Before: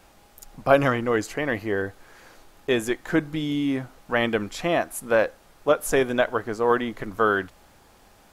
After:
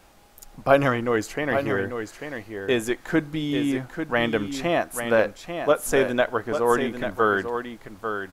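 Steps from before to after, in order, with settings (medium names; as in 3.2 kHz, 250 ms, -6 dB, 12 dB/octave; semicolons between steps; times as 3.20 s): delay 843 ms -8 dB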